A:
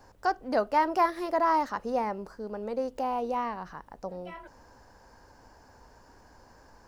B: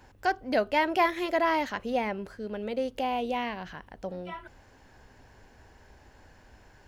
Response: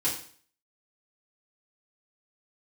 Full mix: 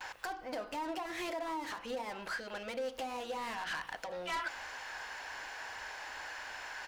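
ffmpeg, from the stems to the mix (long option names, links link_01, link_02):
-filter_complex "[0:a]asoftclip=type=tanh:threshold=-20dB,acrossover=split=470[link_01][link_02];[link_01]aeval=exprs='val(0)*(1-0.5/2+0.5/2*cos(2*PI*2.6*n/s))':channel_layout=same[link_03];[link_02]aeval=exprs='val(0)*(1-0.5/2-0.5/2*cos(2*PI*2.6*n/s))':channel_layout=same[link_04];[link_03][link_04]amix=inputs=2:normalize=0,volume=-9.5dB,asplit=3[link_05][link_06][link_07];[link_06]volume=-10.5dB[link_08];[1:a]highpass=920,asplit=2[link_09][link_10];[link_10]highpass=frequency=720:poles=1,volume=29dB,asoftclip=type=tanh:threshold=-14dB[link_11];[link_09][link_11]amix=inputs=2:normalize=0,lowpass=frequency=4400:poles=1,volume=-6dB,asoftclip=type=tanh:threshold=-27dB,volume=-1,adelay=6.6,volume=-3.5dB[link_12];[link_07]apad=whole_len=303608[link_13];[link_12][link_13]sidechaincompress=threshold=-53dB:ratio=5:attack=21:release=205[link_14];[2:a]atrim=start_sample=2205[link_15];[link_08][link_15]afir=irnorm=-1:irlink=0[link_16];[link_05][link_14][link_16]amix=inputs=3:normalize=0,alimiter=level_in=6.5dB:limit=-24dB:level=0:latency=1:release=123,volume=-6.5dB"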